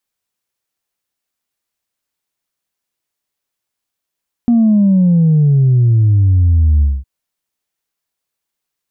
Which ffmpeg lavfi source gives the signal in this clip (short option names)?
-f lavfi -i "aevalsrc='0.422*clip((2.56-t)/0.22,0,1)*tanh(1*sin(2*PI*240*2.56/log(65/240)*(exp(log(65/240)*t/2.56)-1)))/tanh(1)':d=2.56:s=44100"